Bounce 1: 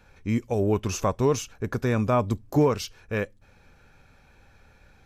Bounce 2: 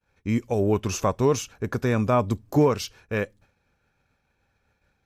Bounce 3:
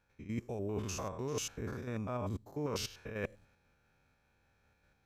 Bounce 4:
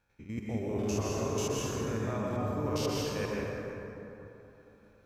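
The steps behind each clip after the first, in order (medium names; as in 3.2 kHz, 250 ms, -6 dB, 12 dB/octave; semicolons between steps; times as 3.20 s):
high-pass 56 Hz 6 dB/octave; expander -47 dBFS; trim +1.5 dB
spectrogram pixelated in time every 100 ms; reverse; compression 8:1, threshold -34 dBFS, peak gain reduction 18 dB; reverse; trim -1 dB
plate-style reverb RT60 3.3 s, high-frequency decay 0.45×, pre-delay 110 ms, DRR -5 dB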